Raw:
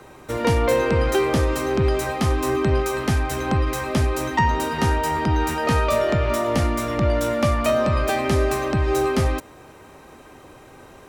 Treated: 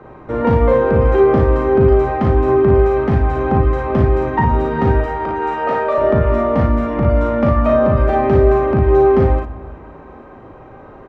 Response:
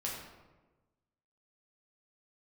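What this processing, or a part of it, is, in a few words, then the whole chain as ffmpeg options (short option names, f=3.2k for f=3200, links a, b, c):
compressed reverb return: -filter_complex "[0:a]asettb=1/sr,asplit=3[a][b][c];[a]atrim=end=5.004[d];[b]atrim=start=5:end=5.98,asetpts=PTS-STARTPTS,afade=t=in:d=0.004:c=qsin,afade=t=out:st=0.976:d=0.004:c=qsin,highpass=450[e];[c]atrim=start=5.976[f];[d][e]acrossfade=d=0.004:c1=hsin:c2=qsin[g];[g][f]acrossfade=d=0.004:c1=qsin:c2=hsin,lowpass=1.3k,asplit=2[h][i];[1:a]atrim=start_sample=2205[j];[i][j]afir=irnorm=-1:irlink=0,acompressor=threshold=-21dB:ratio=6,volume=-9.5dB[k];[h][k]amix=inputs=2:normalize=0,aecho=1:1:38|56:0.596|0.631,volume=3dB"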